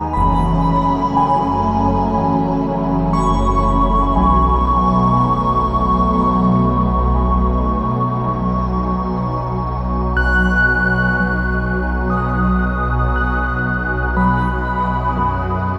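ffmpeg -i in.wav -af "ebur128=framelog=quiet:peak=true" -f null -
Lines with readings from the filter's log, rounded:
Integrated loudness:
  I:         -16.4 LUFS
  Threshold: -26.4 LUFS
Loudness range:
  LRA:         3.1 LU
  Threshold: -36.4 LUFS
  LRA low:   -17.9 LUFS
  LRA high:  -14.8 LUFS
True peak:
  Peak:       -1.8 dBFS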